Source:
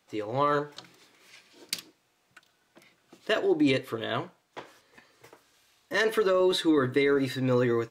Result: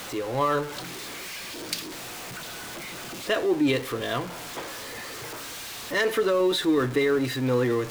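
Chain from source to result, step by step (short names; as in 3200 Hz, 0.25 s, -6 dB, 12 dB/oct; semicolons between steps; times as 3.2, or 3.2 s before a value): zero-crossing step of -32 dBFS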